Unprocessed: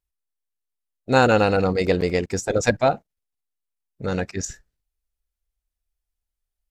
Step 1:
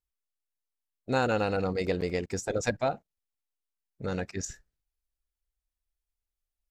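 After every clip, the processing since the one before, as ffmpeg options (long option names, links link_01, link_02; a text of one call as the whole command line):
ffmpeg -i in.wav -af "acompressor=threshold=-25dB:ratio=1.5,volume=-5.5dB" out.wav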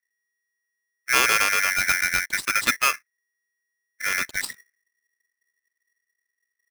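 ffmpeg -i in.wav -filter_complex "[0:a]acrossover=split=730[link_01][link_02];[link_02]aeval=exprs='sgn(val(0))*max(abs(val(0))-0.00398,0)':channel_layout=same[link_03];[link_01][link_03]amix=inputs=2:normalize=0,aeval=exprs='val(0)*sgn(sin(2*PI*1900*n/s))':channel_layout=same,volume=7dB" out.wav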